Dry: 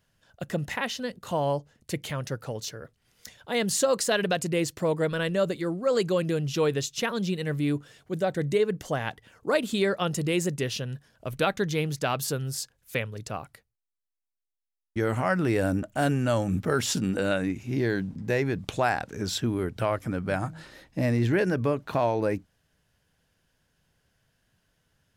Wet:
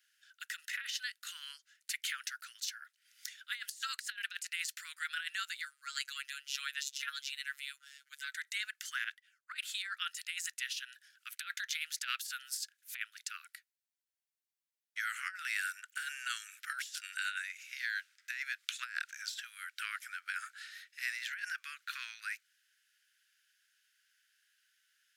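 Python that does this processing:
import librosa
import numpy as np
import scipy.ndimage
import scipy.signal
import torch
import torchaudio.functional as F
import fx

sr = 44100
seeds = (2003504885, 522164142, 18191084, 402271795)

y = fx.robotise(x, sr, hz=139.0, at=(5.65, 8.32))
y = fx.band_widen(y, sr, depth_pct=100, at=(9.04, 10.82))
y = scipy.signal.sosfilt(scipy.signal.butter(12, 1400.0, 'highpass', fs=sr, output='sos'), y)
y = fx.over_compress(y, sr, threshold_db=-36.0, ratio=-0.5)
y = y * 10.0 ** (-1.5 / 20.0)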